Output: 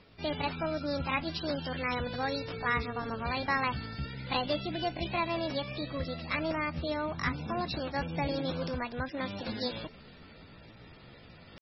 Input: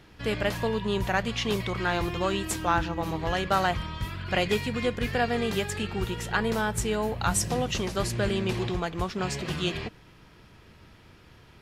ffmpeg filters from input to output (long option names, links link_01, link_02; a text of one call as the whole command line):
ffmpeg -i in.wav -af "areverse,acompressor=mode=upward:threshold=-38dB:ratio=2.5,areverse,asetrate=62367,aresample=44100,atempo=0.707107,volume=-5dB" -ar 24000 -c:a libmp3lame -b:a 16k out.mp3